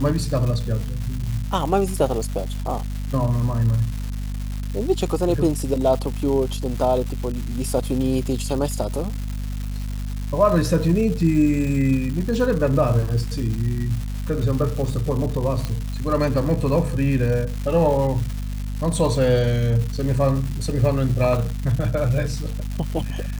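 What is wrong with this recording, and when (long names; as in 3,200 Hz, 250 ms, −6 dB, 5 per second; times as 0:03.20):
surface crackle 400 per second −28 dBFS
mains hum 50 Hz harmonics 5 −27 dBFS
0:15.65: click −12 dBFS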